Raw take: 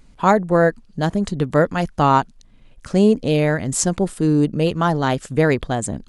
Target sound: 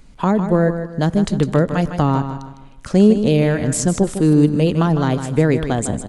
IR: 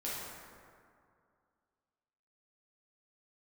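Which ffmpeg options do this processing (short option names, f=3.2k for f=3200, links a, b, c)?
-filter_complex "[0:a]asplit=2[a][b];[1:a]atrim=start_sample=2205,afade=t=out:st=0.34:d=0.01,atrim=end_sample=15435[c];[b][c]afir=irnorm=-1:irlink=0,volume=-26dB[d];[a][d]amix=inputs=2:normalize=0,acrossover=split=380[e][f];[f]acompressor=threshold=-23dB:ratio=10[g];[e][g]amix=inputs=2:normalize=0,aecho=1:1:155|310|465|620:0.335|0.114|0.0387|0.0132,volume=3.5dB"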